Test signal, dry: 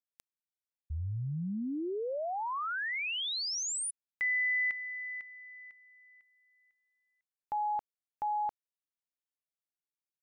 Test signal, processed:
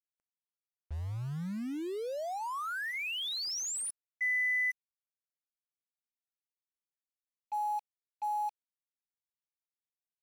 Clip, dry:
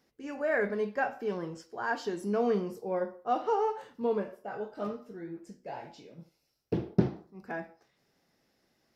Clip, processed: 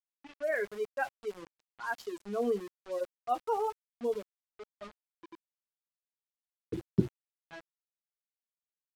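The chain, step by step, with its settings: per-bin expansion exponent 2; sample gate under -44.5 dBFS; low-pass opened by the level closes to 2600 Hz, open at -34 dBFS

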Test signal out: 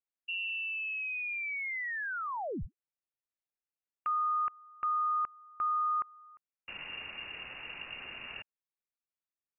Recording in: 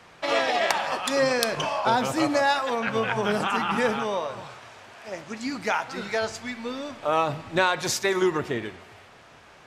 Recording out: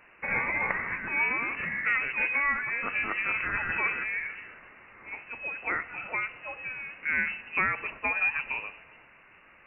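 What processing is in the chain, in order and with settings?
inverted band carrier 2800 Hz; gain -5 dB

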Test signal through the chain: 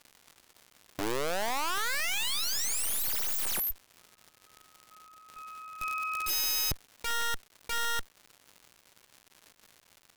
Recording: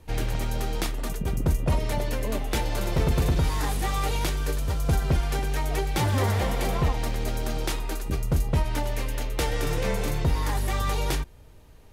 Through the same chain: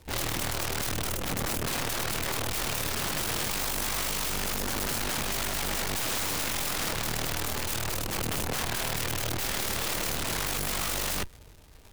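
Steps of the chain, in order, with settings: crackle 390/s -42 dBFS; added harmonics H 2 -32 dB, 8 -10 dB, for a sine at -14 dBFS; wrapped overs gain 23.5 dB; gain -2 dB

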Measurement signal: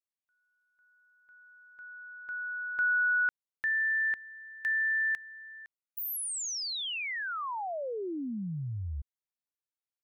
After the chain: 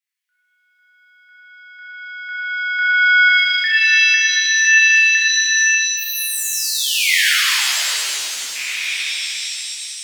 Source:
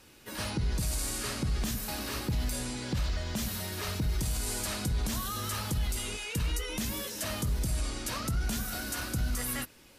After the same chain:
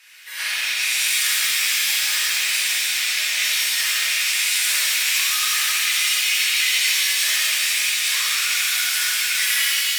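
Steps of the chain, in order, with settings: rattling part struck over -33 dBFS, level -27 dBFS; resonant high-pass 2000 Hz, resonance Q 2.9; shimmer reverb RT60 3 s, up +7 st, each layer -2 dB, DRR -8 dB; gain +3.5 dB

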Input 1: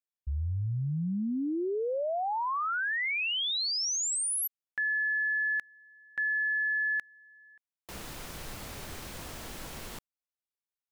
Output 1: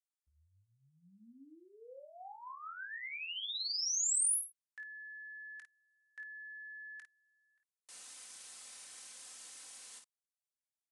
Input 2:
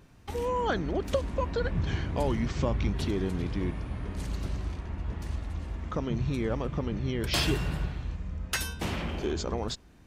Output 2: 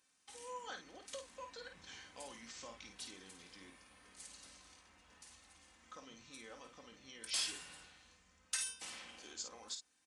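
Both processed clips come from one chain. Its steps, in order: differentiator; on a send: early reflections 22 ms -10.5 dB, 52 ms -7 dB; on the sum: downsampling 22050 Hz; bell 3300 Hz -3 dB 1.7 oct; comb 3.9 ms, depth 48%; gain -2.5 dB

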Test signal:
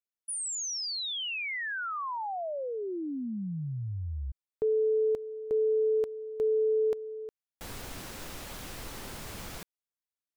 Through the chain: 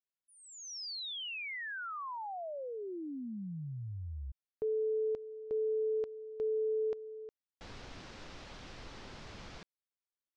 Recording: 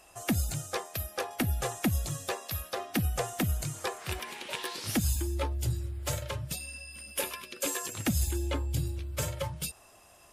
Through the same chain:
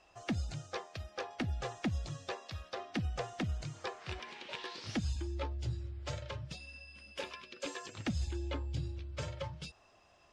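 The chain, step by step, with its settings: LPF 5600 Hz 24 dB/oct; gain -6.5 dB

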